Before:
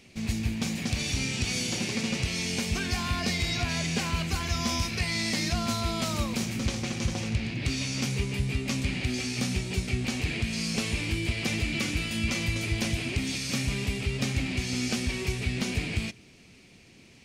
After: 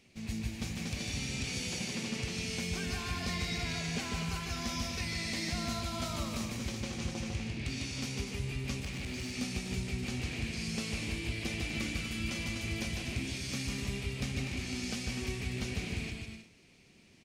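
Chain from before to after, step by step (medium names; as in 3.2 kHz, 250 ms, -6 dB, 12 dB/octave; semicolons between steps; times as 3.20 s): bouncing-ball echo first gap 150 ms, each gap 0.65×, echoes 5; 8.80–9.34 s: overload inside the chain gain 25.5 dB; trim -9 dB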